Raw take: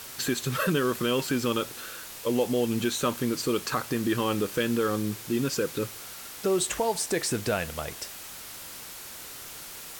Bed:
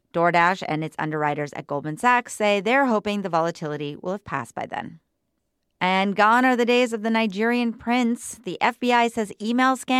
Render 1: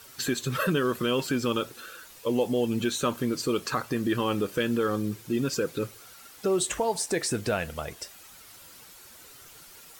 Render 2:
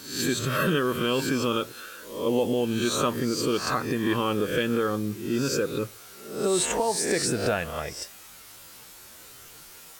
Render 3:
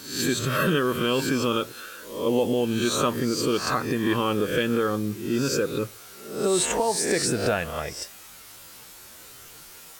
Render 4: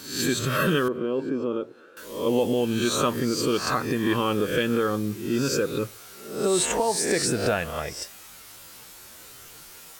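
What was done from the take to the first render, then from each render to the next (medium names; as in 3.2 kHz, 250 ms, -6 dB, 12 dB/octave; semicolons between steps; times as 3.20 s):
noise reduction 10 dB, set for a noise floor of -42 dBFS
reverse spectral sustain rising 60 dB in 0.59 s
trim +1.5 dB
0.88–1.97 s: band-pass filter 380 Hz, Q 1.2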